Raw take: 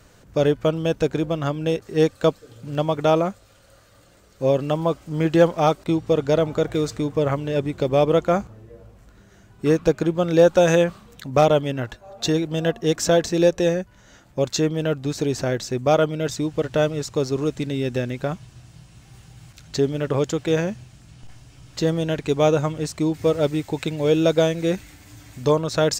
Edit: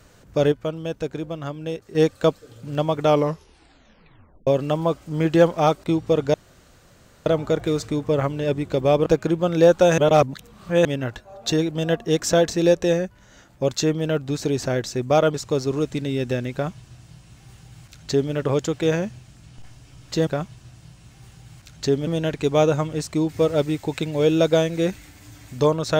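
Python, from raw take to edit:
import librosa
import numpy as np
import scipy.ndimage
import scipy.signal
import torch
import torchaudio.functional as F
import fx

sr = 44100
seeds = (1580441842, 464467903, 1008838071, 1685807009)

y = fx.edit(x, sr, fx.clip_gain(start_s=0.52, length_s=1.43, db=-6.5),
    fx.tape_stop(start_s=3.05, length_s=1.42),
    fx.insert_room_tone(at_s=6.34, length_s=0.92),
    fx.cut(start_s=8.14, length_s=1.68),
    fx.reverse_span(start_s=10.74, length_s=0.87),
    fx.cut(start_s=16.1, length_s=0.89),
    fx.duplicate(start_s=18.18, length_s=1.8, to_s=21.92), tone=tone)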